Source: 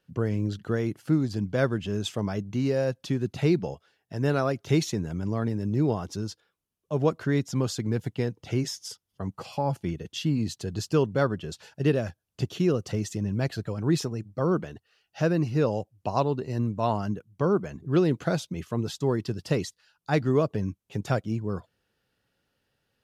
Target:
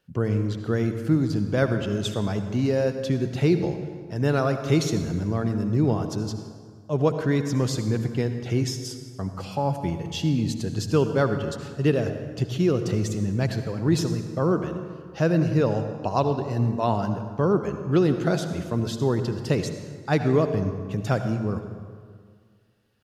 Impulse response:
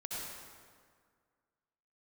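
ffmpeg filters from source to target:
-filter_complex "[0:a]atempo=1,asplit=2[a][b];[1:a]atrim=start_sample=2205,lowshelf=f=160:g=5.5[c];[b][c]afir=irnorm=-1:irlink=0,volume=-6.5dB[d];[a][d]amix=inputs=2:normalize=0"

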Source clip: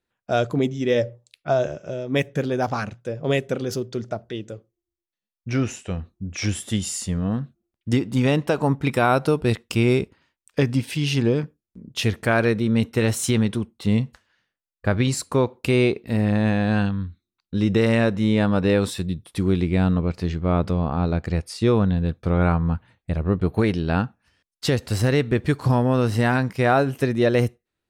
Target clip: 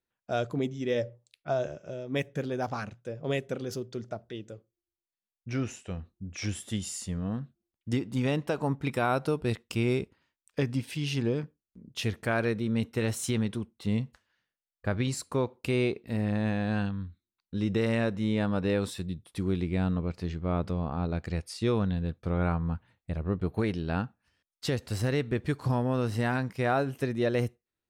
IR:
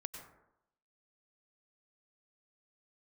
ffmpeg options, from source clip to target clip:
-filter_complex "[0:a]asettb=1/sr,asplit=3[a][b][c];[a]atrim=end=21.074[d];[b]atrim=start=21.07:end=22.03,asetpts=PTS-STARTPTS,afade=t=in:d=0.004:c=qsin,afade=t=out:st=0.956:d=0.004:c=qsin,adynamicequalizer=threshold=0.0178:dfrequency=1700:dqfactor=0.7:tfrequency=1700:tqfactor=0.7:attack=5:release=100:ratio=0.375:range=2:mode=boostabove:tftype=highshelf[e];[c]atrim=start=22.026[f];[d][e]acrossfade=d=0.004:c1=hsin:c2=qsin[g];[g][f]acrossfade=d=0.004:c1=qsin:c2=hsin,volume=-8.5dB"

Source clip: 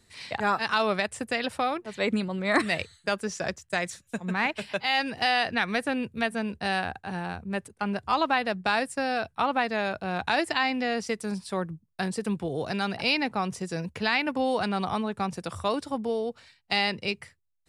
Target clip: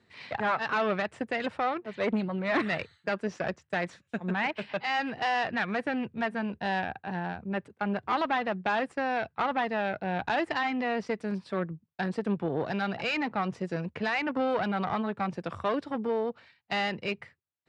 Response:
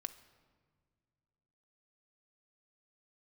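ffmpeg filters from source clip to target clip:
-af "aeval=exprs='(tanh(17.8*val(0)+0.7)-tanh(0.7))/17.8':c=same,highpass=120,lowpass=2.7k,volume=4dB"

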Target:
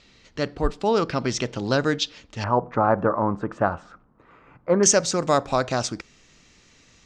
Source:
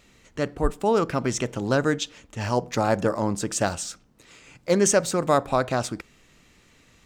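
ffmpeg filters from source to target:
-af "asetnsamples=n=441:p=0,asendcmd='2.44 lowpass f 1200;4.83 lowpass f 5900',lowpass=f=4.7k:t=q:w=2.4"

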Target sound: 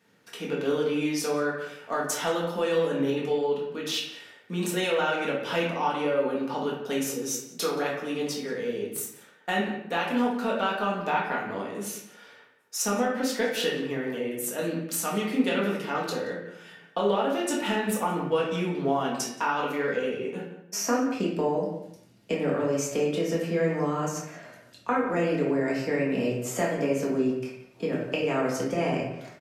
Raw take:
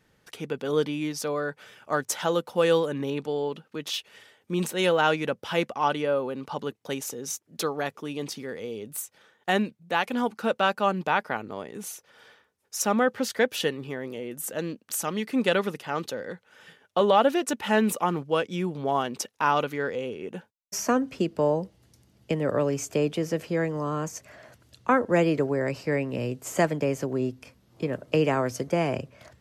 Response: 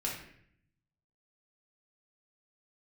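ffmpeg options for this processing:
-filter_complex "[0:a]highpass=180,acompressor=threshold=-25dB:ratio=6,asplit=2[a][b];[b]adelay=176,lowpass=f=2.1k:p=1,volume=-10.5dB,asplit=2[c][d];[d]adelay=176,lowpass=f=2.1k:p=1,volume=0.16[e];[a][c][e]amix=inputs=3:normalize=0[f];[1:a]atrim=start_sample=2205,afade=t=out:st=0.25:d=0.01,atrim=end_sample=11466[g];[f][g]afir=irnorm=-1:irlink=0"

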